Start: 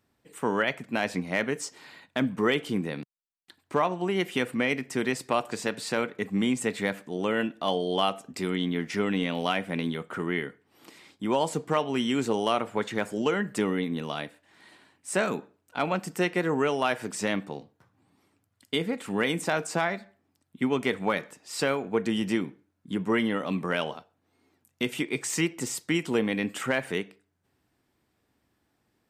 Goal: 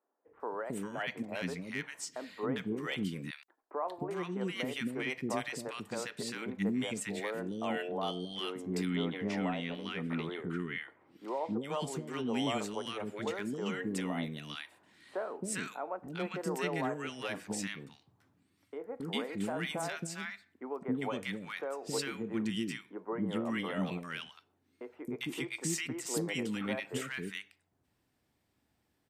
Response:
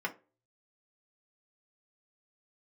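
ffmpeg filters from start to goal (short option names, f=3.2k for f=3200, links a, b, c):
-filter_complex "[0:a]asettb=1/sr,asplit=3[a][b][c];[a]atrim=end=8.454[d];[b]atrim=start=8.45:end=11.24,asetpts=PTS-STARTPTS,afade=t=in:d=0.004:c=qsin,afade=t=out:st=2.786:d=0.004:c=qsin,aemphasis=mode=reproduction:type=50kf[e];[c]atrim=start=11.236[f];[d][e]acrossfade=d=0.004:c1=hsin:c2=qsin[g];[g][f]acrossfade=d=0.004:c1=qsin:c2=hsin,alimiter=limit=-18dB:level=0:latency=1:release=445,acrossover=split=370|1300[h][i][j];[h]adelay=270[k];[j]adelay=400[l];[k][i][l]amix=inputs=3:normalize=0,volume=-3dB"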